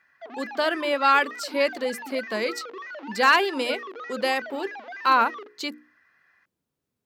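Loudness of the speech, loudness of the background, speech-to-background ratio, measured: −24.0 LKFS, −38.0 LKFS, 14.0 dB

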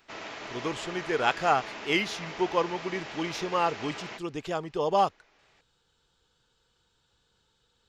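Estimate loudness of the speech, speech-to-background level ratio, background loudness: −29.5 LKFS, 10.0 dB, −39.5 LKFS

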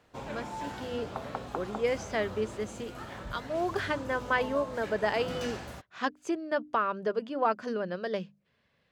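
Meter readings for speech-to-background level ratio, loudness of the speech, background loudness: 8.5 dB, −32.5 LKFS, −41.0 LKFS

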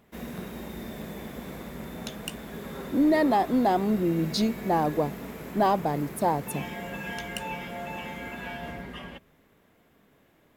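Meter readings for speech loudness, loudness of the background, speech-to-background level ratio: −26.0 LKFS, −38.0 LKFS, 12.0 dB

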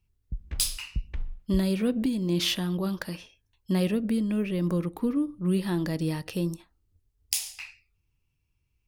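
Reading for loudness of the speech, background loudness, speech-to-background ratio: −28.5 LKFS, −40.0 LKFS, 11.5 dB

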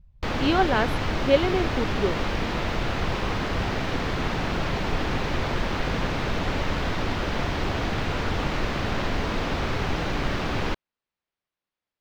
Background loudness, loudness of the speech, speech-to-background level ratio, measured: −27.5 LKFS, −25.5 LKFS, 2.0 dB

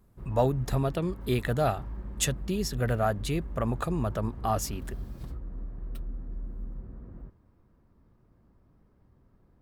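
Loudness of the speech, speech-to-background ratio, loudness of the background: −30.0 LKFS, 11.5 dB, −41.5 LKFS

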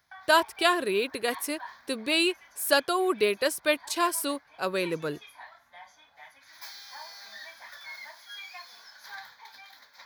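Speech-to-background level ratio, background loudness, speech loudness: 19.0 dB, −46.0 LKFS, −27.0 LKFS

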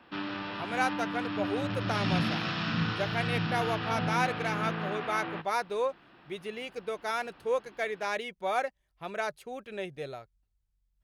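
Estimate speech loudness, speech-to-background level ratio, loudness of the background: −34.0 LKFS, −1.0 dB, −33.0 LKFS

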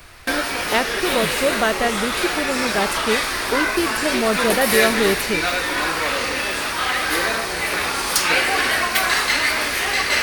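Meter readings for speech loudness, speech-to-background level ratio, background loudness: −23.0 LKFS, −3.5 dB, −19.5 LKFS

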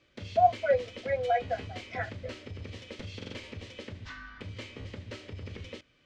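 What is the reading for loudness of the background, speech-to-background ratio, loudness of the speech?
−43.0 LKFS, 13.5 dB, −29.5 LKFS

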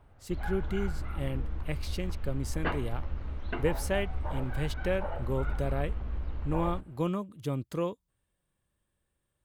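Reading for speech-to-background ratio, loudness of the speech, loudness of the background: 3.0 dB, −35.0 LKFS, −38.0 LKFS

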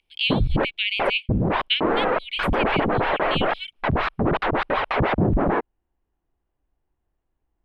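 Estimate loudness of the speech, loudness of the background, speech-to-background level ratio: −27.5 LKFS, −23.5 LKFS, −4.0 dB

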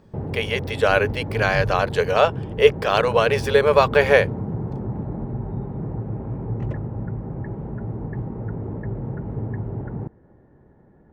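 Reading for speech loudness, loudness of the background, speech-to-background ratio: −19.5 LKFS, −29.5 LKFS, 10.0 dB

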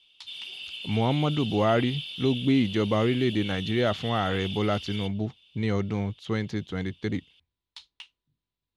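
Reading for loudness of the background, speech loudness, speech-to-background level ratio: −36.5 LKFS, −27.5 LKFS, 9.0 dB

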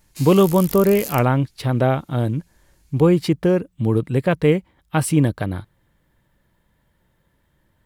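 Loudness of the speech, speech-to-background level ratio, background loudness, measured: −19.0 LKFS, 13.0 dB, −32.0 LKFS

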